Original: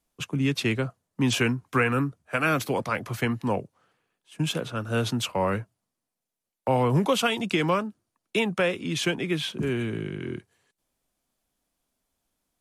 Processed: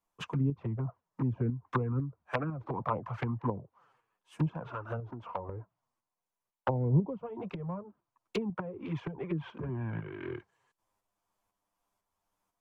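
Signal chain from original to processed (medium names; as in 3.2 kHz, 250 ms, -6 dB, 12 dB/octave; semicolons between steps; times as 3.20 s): low-pass that closes with the level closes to 300 Hz, closed at -21 dBFS; fifteen-band graphic EQ 250 Hz -5 dB, 1 kHz +12 dB, 4 kHz -5 dB, 10 kHz -5 dB; 4.71–5.49 s: compression 5:1, threshold -30 dBFS, peak gain reduction 10.5 dB; tremolo saw up 2 Hz, depth 50%; touch-sensitive flanger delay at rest 10.1 ms, full sweep at -24 dBFS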